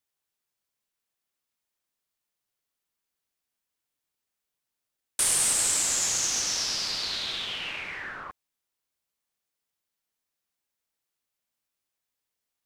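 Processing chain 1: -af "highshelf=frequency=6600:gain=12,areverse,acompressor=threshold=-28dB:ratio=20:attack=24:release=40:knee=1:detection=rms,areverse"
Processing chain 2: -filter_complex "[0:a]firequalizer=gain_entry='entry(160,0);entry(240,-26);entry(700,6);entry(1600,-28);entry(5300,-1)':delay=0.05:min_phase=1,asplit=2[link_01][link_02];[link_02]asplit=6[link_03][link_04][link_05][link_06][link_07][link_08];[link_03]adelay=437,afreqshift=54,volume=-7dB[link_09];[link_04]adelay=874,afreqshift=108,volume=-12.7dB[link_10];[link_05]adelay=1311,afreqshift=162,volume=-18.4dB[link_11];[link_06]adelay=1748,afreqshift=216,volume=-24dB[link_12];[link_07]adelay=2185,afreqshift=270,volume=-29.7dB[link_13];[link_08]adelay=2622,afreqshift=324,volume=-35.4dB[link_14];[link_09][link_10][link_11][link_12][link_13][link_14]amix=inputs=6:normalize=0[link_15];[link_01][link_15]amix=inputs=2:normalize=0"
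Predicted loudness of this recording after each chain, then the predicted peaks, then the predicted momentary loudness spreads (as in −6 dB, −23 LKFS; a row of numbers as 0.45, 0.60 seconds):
−26.5, −25.5 LKFS; −16.0, −13.0 dBFS; 12, 19 LU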